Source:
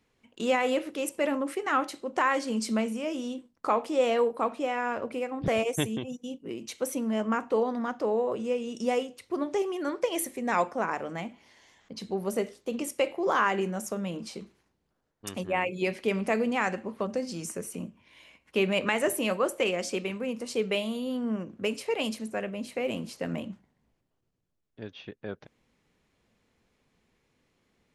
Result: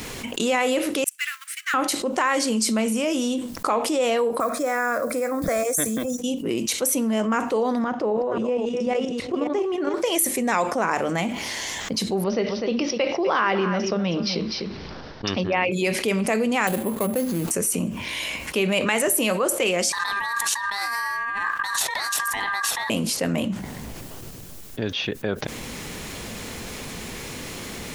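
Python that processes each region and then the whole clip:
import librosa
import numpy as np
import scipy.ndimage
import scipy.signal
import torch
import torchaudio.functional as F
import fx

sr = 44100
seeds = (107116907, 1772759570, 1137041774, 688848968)

y = fx.chain(x, sr, fx.law_mismatch(coded='A'),
    fx.steep_highpass(hz=1400.0, slope=48),
    fx.upward_expand(threshold_db=-55.0, expansion=2.5), at=(1.04, 1.74))
y = fx.chain(y, sr, fx.block_float(bits=7),
    fx.peak_eq(hz=200.0, db=-7.5, octaves=1.1),
    fx.fixed_phaser(hz=580.0, stages=8), at=(4.4, 6.19))
y = fx.chain(y, sr, fx.reverse_delay(ms=272, wet_db=-6.5),
    fx.level_steps(step_db=9),
    fx.spacing_loss(db_at_10k=23), at=(7.84, 9.94))
y = fx.chain(y, sr, fx.steep_lowpass(hz=5600.0, slope=96),
    fx.echo_single(ms=250, db=-13.0), at=(12.24, 15.72))
y = fx.chain(y, sr, fx.median_filter(points=25),
    fx.resample_bad(factor=4, down='filtered', up='hold'), at=(16.67, 17.51))
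y = fx.chain(y, sr, fx.over_compress(threshold_db=-41.0, ratio=-1.0),
    fx.ring_mod(carrier_hz=1400.0), at=(19.92, 22.9))
y = fx.high_shelf(y, sr, hz=5200.0, db=11.5)
y = fx.env_flatten(y, sr, amount_pct=70)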